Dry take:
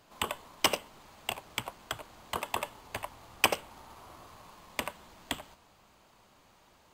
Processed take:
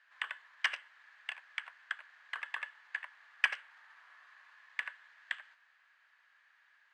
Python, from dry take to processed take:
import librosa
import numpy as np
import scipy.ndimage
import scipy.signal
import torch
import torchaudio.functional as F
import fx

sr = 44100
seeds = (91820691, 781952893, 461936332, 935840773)

y = fx.ladder_bandpass(x, sr, hz=1800.0, resonance_pct=80)
y = y * 10.0 ** (5.5 / 20.0)